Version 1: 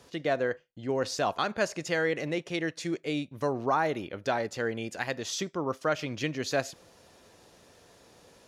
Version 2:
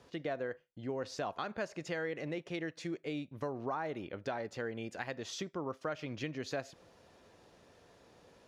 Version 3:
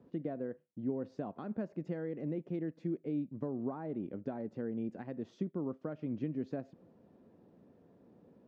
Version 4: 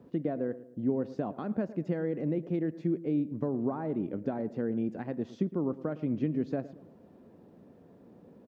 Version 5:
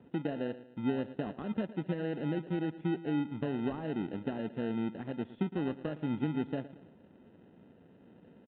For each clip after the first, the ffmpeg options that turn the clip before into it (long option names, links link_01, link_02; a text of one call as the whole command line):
ffmpeg -i in.wav -af "highshelf=frequency=5300:gain=-12,acompressor=threshold=-33dB:ratio=2.5,volume=-3.5dB" out.wav
ffmpeg -i in.wav -af "bandpass=frequency=220:width_type=q:width=1.8:csg=0,volume=8dB" out.wav
ffmpeg -i in.wav -filter_complex "[0:a]asplit=2[link_01][link_02];[link_02]adelay=112,lowpass=frequency=1300:poles=1,volume=-15.5dB,asplit=2[link_03][link_04];[link_04]adelay=112,lowpass=frequency=1300:poles=1,volume=0.47,asplit=2[link_05][link_06];[link_06]adelay=112,lowpass=frequency=1300:poles=1,volume=0.47,asplit=2[link_07][link_08];[link_08]adelay=112,lowpass=frequency=1300:poles=1,volume=0.47[link_09];[link_01][link_03][link_05][link_07][link_09]amix=inputs=5:normalize=0,volume=6.5dB" out.wav
ffmpeg -i in.wav -filter_complex "[0:a]asplit=2[link_01][link_02];[link_02]acrusher=samples=39:mix=1:aa=0.000001,volume=-4dB[link_03];[link_01][link_03]amix=inputs=2:normalize=0,aresample=8000,aresample=44100,volume=-6dB" out.wav